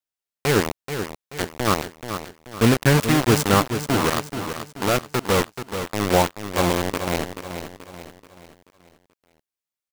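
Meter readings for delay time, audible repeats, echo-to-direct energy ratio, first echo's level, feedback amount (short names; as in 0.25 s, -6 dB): 0.432 s, 4, -8.0 dB, -9.0 dB, 44%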